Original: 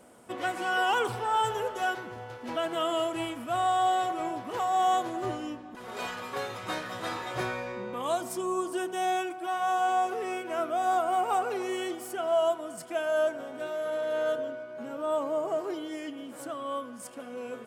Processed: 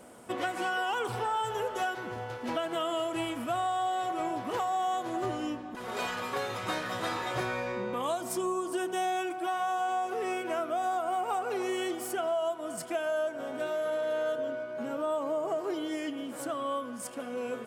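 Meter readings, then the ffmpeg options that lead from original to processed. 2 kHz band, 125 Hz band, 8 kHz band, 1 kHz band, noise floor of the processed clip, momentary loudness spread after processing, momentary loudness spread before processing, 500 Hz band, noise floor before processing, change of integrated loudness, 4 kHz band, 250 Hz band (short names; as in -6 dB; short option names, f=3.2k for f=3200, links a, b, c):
-2.0 dB, +0.5 dB, 0.0 dB, -3.0 dB, -41 dBFS, 6 LU, 11 LU, -1.5 dB, -44 dBFS, -2.0 dB, -1.5 dB, +0.5 dB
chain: -af "acompressor=threshold=-32dB:ratio=5,volume=3.5dB"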